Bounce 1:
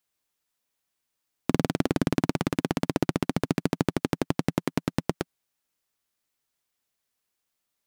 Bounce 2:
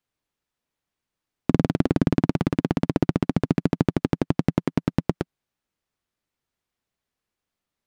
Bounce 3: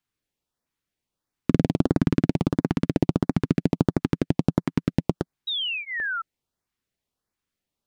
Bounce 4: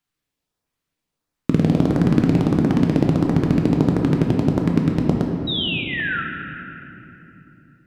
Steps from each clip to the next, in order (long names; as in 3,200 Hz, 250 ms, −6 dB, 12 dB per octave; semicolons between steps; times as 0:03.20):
low-pass filter 3,200 Hz 6 dB per octave; low-shelf EQ 320 Hz +7.5 dB
sound drawn into the spectrogram fall, 0:05.47–0:06.22, 1,300–3,900 Hz −27 dBFS; auto-filter notch saw up 1.5 Hz 460–3,400 Hz
rectangular room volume 190 cubic metres, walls hard, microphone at 0.44 metres; level +2 dB